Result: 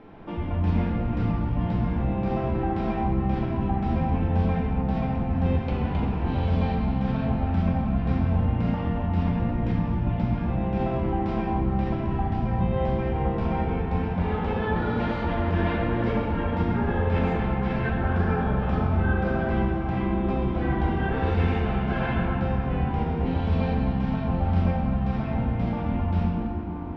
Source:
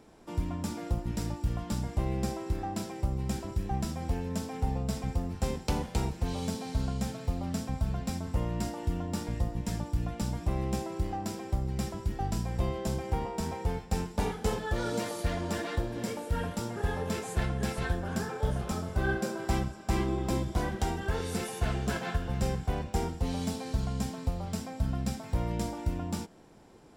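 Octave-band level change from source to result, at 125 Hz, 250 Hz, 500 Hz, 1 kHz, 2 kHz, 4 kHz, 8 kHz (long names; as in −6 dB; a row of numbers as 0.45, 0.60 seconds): +8.0 dB, +9.0 dB, +6.5 dB, +8.0 dB, +6.0 dB, −2.0 dB, below −25 dB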